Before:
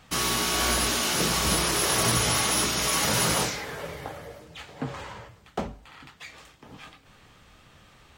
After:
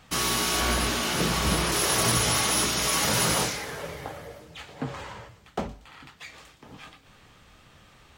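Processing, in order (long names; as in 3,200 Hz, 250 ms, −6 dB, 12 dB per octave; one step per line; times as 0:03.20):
0:00.60–0:01.72: bass and treble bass +3 dB, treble −5 dB
delay with a high-pass on its return 118 ms, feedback 53%, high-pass 3,200 Hz, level −14 dB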